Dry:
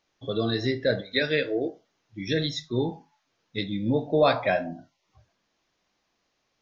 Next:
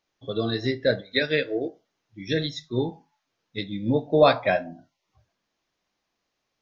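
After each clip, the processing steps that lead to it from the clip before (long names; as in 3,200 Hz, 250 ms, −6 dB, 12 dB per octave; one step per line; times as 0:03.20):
expander for the loud parts 1.5 to 1, over −34 dBFS
level +4.5 dB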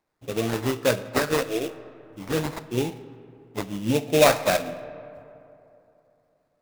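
sample-rate reduction 3,100 Hz, jitter 20%
comb and all-pass reverb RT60 3 s, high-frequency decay 0.45×, pre-delay 0 ms, DRR 14.5 dB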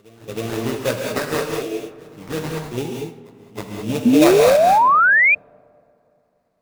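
backwards echo 318 ms −20.5 dB
reverb whose tail is shaped and stops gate 230 ms rising, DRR 1 dB
sound drawn into the spectrogram rise, 0:04.05–0:05.35, 230–2,500 Hz −12 dBFS
level −1 dB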